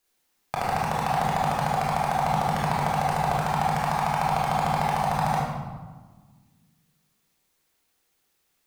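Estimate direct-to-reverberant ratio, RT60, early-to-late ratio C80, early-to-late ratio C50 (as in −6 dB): −5.5 dB, 1.5 s, 2.5 dB, 0.0 dB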